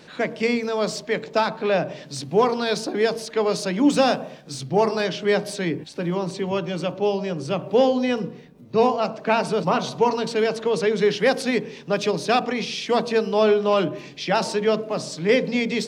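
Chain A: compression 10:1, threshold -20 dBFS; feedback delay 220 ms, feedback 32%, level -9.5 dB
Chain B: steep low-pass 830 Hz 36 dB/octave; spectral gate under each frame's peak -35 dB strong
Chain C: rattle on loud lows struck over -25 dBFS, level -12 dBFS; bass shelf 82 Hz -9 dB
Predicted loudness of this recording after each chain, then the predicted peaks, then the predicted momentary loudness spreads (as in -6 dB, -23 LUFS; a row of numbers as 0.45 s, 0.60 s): -26.0 LUFS, -23.5 LUFS, -22.5 LUFS; -11.0 dBFS, -7.0 dBFS, -4.0 dBFS; 4 LU, 9 LU, 8 LU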